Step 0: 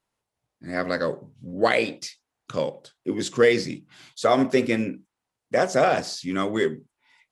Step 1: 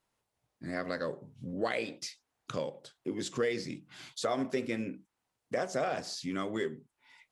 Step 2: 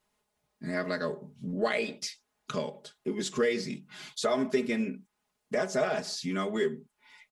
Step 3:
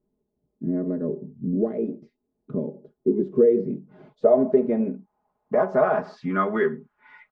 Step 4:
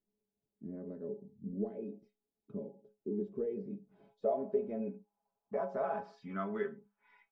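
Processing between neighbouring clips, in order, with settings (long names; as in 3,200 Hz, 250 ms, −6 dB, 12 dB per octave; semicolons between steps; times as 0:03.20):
downward compressor 2 to 1, threshold −39 dBFS, peak gain reduction 14 dB
comb filter 4.8 ms, depth 87%; level +1.5 dB
low-pass filter sweep 330 Hz → 1,500 Hz, 0:02.90–0:06.71; level +5.5 dB
stiff-string resonator 100 Hz, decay 0.23 s, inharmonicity 0.008; level −4.5 dB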